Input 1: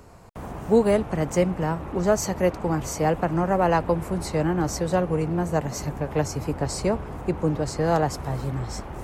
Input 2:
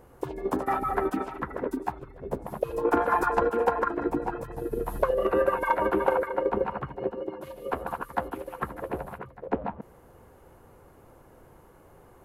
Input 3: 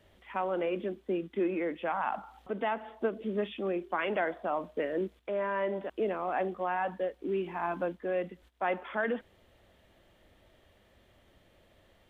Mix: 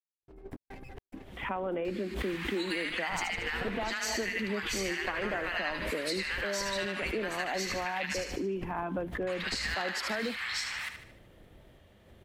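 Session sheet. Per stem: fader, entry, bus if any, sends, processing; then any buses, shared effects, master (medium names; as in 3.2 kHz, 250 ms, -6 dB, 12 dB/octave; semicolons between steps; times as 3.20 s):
+3.0 dB, 1.85 s, muted 8.24–9.27 s, bus A, no send, echo send -9 dB, inverse Chebyshev high-pass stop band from 270 Hz, stop band 70 dB; high-order bell 2.8 kHz +14.5 dB
2.91 s -20.5 dB -> 3.15 s -11 dB, 0.00 s, bus A, no send, no echo send, comb filter that takes the minimum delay 0.38 ms; bass shelf 260 Hz +11.5 dB; trance gate "..xx.xx.xxxxxx" 107 bpm -60 dB
+1.0 dB, 1.15 s, no bus, no send, no echo send, peaking EQ 140 Hz +7 dB 2.4 oct; swell ahead of each attack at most 100 dB/s
bus A: 0.0 dB, compression, threshold -26 dBFS, peak gain reduction 12.5 dB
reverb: none
echo: feedback delay 75 ms, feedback 47%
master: compression 4:1, threshold -31 dBFS, peak gain reduction 9.5 dB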